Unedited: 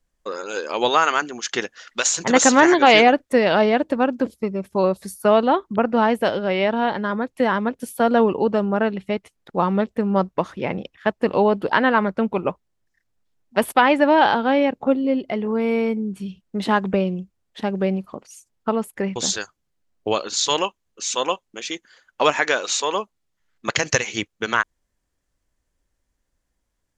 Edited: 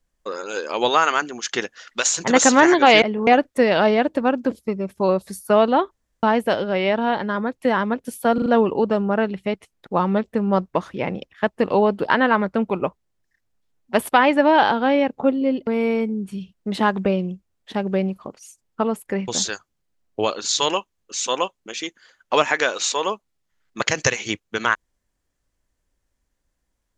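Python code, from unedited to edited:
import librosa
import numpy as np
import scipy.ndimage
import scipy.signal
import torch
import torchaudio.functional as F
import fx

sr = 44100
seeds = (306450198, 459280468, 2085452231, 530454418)

y = fx.edit(x, sr, fx.room_tone_fill(start_s=5.66, length_s=0.32),
    fx.stutter(start_s=8.09, slice_s=0.04, count=4),
    fx.move(start_s=15.3, length_s=0.25, to_s=3.02), tone=tone)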